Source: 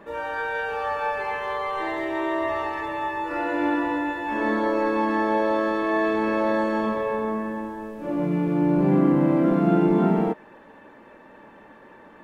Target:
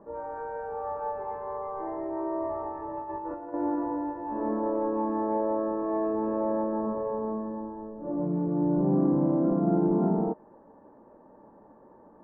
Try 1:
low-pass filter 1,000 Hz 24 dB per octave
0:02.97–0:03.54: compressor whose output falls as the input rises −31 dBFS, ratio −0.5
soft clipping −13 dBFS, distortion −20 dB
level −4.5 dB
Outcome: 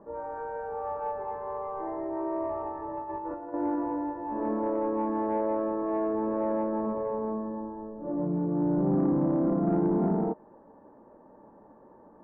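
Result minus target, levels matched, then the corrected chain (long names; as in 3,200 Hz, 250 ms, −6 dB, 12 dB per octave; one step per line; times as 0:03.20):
soft clipping: distortion +12 dB
low-pass filter 1,000 Hz 24 dB per octave
0:02.97–0:03.54: compressor whose output falls as the input rises −31 dBFS, ratio −0.5
soft clipping −6 dBFS, distortion −32 dB
level −4.5 dB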